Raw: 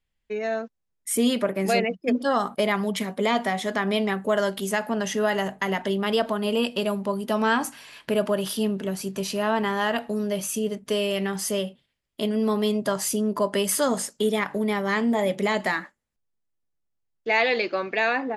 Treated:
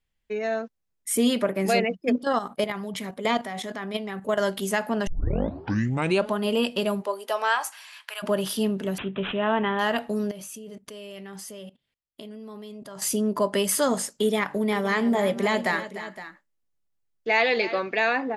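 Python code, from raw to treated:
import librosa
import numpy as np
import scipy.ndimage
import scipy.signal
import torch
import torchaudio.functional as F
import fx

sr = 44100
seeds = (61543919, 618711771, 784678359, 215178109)

y = fx.level_steps(x, sr, step_db=11, at=(2.15, 4.39), fade=0.02)
y = fx.highpass(y, sr, hz=fx.line((7.0, 360.0), (8.22, 1100.0)), slope=24, at=(7.0, 8.22), fade=0.02)
y = fx.resample_bad(y, sr, factor=6, down='none', up='filtered', at=(8.98, 9.79))
y = fx.level_steps(y, sr, step_db=20, at=(10.31, 13.02))
y = fx.echo_multitap(y, sr, ms=(299, 515), db=(-13.5, -14.5), at=(14.71, 17.78), fade=0.02)
y = fx.edit(y, sr, fx.tape_start(start_s=5.07, length_s=1.28), tone=tone)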